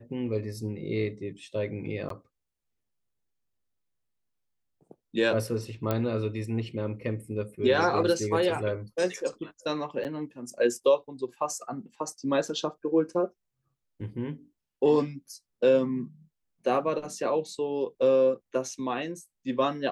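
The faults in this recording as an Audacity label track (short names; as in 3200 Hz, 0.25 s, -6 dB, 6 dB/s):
2.090000	2.100000	gap 13 ms
5.910000	5.910000	pop -14 dBFS
10.040000	10.050000	gap 8.4 ms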